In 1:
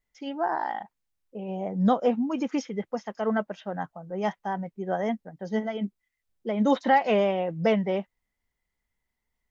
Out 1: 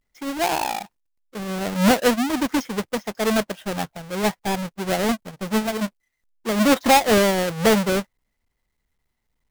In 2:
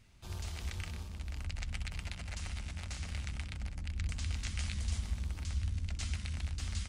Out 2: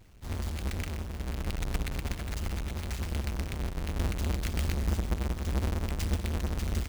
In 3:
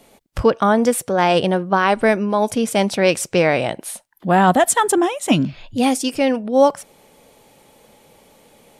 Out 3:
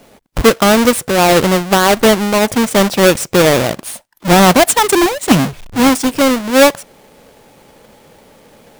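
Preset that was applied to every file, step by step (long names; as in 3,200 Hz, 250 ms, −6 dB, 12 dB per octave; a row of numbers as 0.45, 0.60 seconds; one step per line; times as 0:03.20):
each half-wave held at its own peak
level +1.5 dB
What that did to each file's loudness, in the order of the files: +6.0, +6.0, +6.0 LU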